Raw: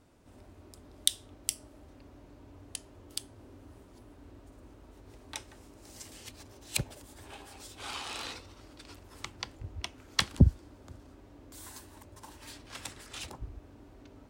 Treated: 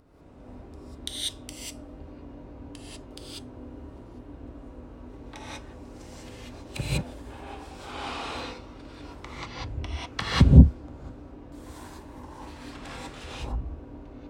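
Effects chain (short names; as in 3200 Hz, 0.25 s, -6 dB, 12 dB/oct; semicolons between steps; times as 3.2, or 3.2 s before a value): LPF 1300 Hz 6 dB/oct; upward compressor, threshold -59 dBFS; non-linear reverb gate 0.22 s rising, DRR -7.5 dB; gain +1.5 dB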